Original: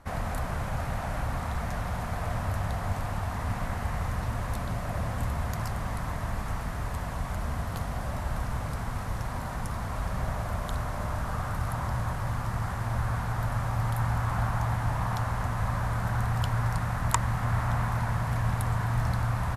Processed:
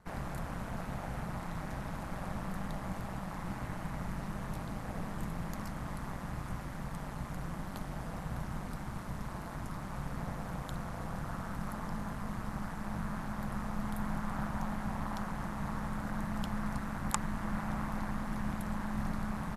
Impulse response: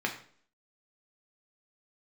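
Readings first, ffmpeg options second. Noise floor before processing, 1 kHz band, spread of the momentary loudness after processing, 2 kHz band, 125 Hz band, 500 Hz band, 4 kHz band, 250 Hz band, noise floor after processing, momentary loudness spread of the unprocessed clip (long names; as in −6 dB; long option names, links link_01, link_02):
−34 dBFS, −8.0 dB, 4 LU, −8.0 dB, −11.5 dB, −7.5 dB, −8.0 dB, 0.0 dB, −43 dBFS, 6 LU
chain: -af "aeval=exprs='val(0)*sin(2*PI*95*n/s)':channel_layout=same,volume=-5dB"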